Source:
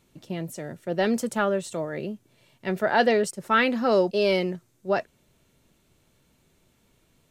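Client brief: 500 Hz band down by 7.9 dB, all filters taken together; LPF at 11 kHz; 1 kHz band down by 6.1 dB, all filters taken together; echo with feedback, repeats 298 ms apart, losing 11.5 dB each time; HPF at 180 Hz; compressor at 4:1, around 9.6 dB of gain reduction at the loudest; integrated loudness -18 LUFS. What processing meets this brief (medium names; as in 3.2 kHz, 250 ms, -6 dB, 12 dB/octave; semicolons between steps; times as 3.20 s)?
high-pass 180 Hz; low-pass 11 kHz; peaking EQ 500 Hz -8.5 dB; peaking EQ 1 kHz -6 dB; compression 4:1, threshold -31 dBFS; feedback delay 298 ms, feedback 27%, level -11.5 dB; trim +18 dB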